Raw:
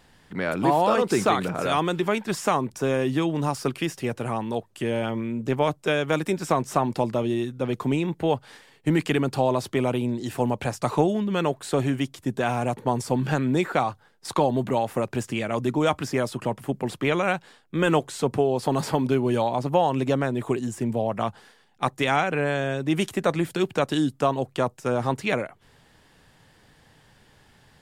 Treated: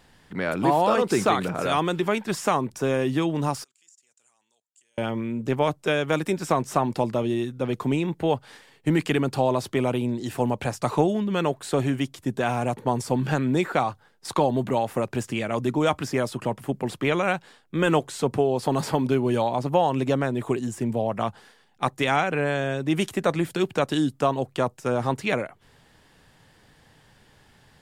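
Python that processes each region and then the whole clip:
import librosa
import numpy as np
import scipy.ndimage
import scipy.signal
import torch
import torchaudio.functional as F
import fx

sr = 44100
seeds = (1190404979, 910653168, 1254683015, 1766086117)

y = fx.chain(x, sr, fx.level_steps(step_db=16),
    fx.bandpass_q(hz=7200.0, q=7.6), at=(3.64, 4.98))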